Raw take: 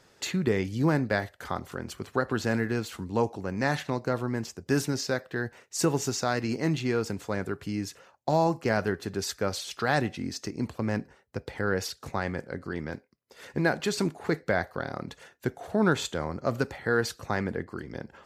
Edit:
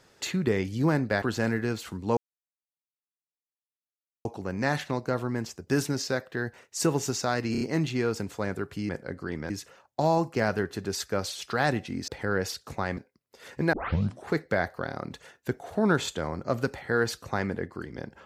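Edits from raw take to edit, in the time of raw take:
1.22–2.29 cut
3.24 insert silence 2.08 s
6.51 stutter 0.03 s, 4 plays
10.37–11.44 cut
12.33–12.94 move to 7.79
13.7 tape start 0.54 s

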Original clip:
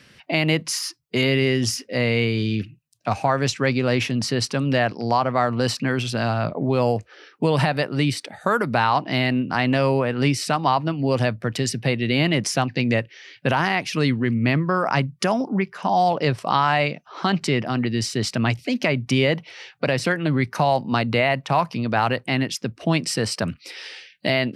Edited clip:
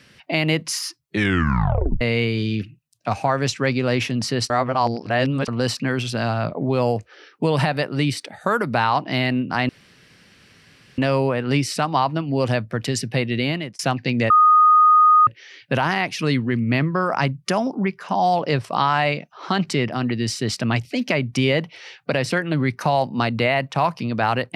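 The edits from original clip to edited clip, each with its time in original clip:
1.03 tape stop 0.98 s
4.5–5.48 reverse
9.69 insert room tone 1.29 s
12.07–12.5 fade out
13.01 add tone 1240 Hz -9.5 dBFS 0.97 s

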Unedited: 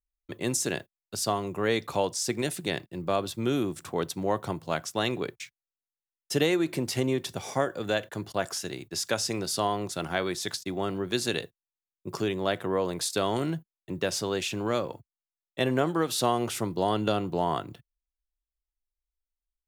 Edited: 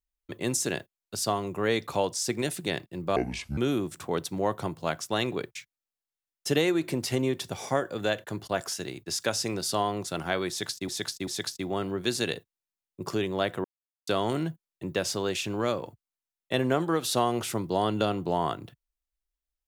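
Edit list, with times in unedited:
3.16–3.42 speed 63%
10.34–10.73 loop, 3 plays
12.71–13.14 mute

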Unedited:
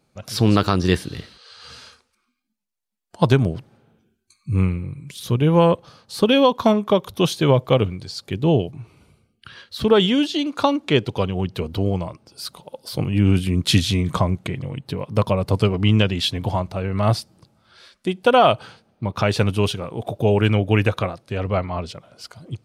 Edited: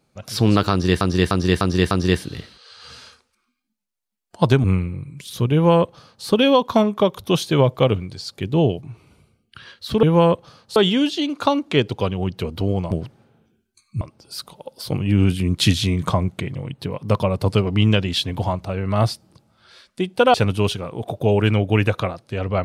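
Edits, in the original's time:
0.71–1.01 loop, 5 plays
3.44–4.54 move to 12.08
5.43–6.16 copy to 9.93
18.41–19.33 cut

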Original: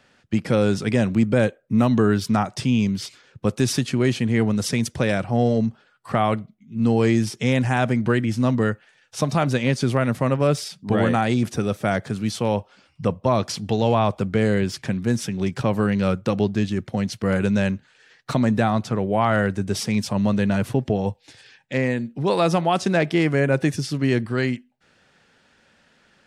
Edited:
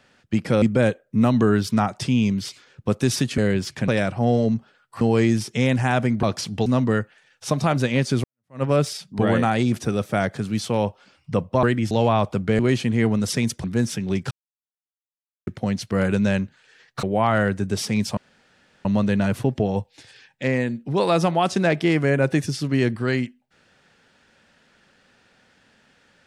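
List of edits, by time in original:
0.62–1.19 cut
3.95–5 swap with 14.45–14.95
6.13–6.87 cut
8.09–8.37 swap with 13.34–13.77
9.95–10.34 fade in exponential
15.62–16.78 mute
18.34–19.01 cut
20.15 insert room tone 0.68 s

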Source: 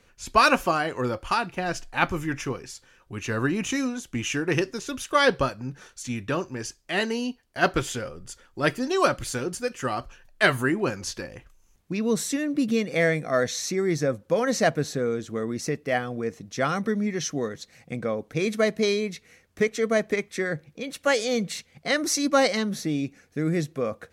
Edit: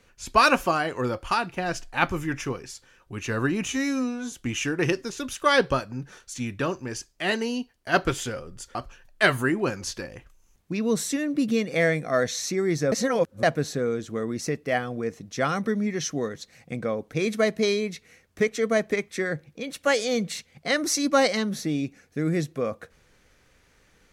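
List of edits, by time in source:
3.7–4.01 stretch 2×
8.44–9.95 cut
14.12–14.63 reverse

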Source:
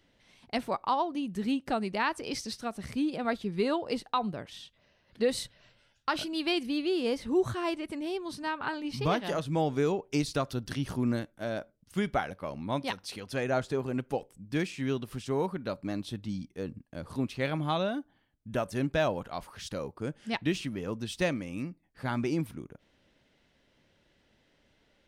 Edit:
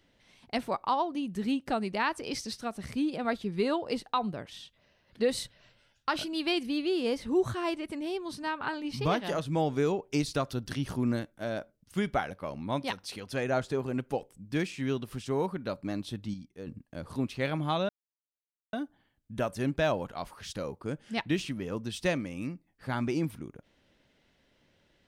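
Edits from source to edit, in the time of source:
16.34–16.67 gain -6.5 dB
17.89 insert silence 0.84 s

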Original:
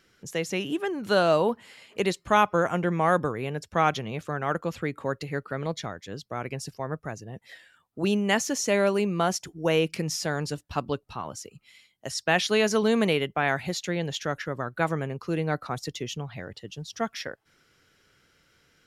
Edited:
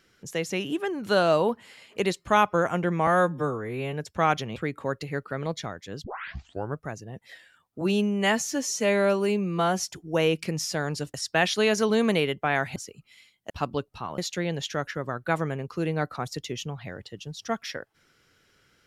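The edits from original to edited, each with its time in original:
3.07–3.5 stretch 2×
4.13–4.76 cut
6.24 tape start 0.74 s
8.01–9.39 stretch 1.5×
10.65–11.33 swap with 12.07–13.69

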